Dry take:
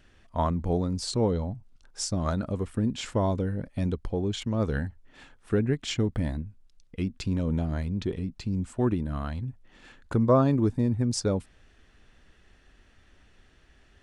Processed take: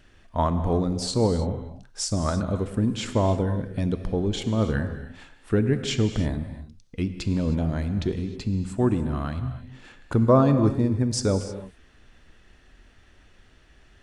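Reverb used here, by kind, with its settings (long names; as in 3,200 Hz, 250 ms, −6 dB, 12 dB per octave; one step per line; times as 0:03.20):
reverb whose tail is shaped and stops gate 340 ms flat, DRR 8.5 dB
level +3 dB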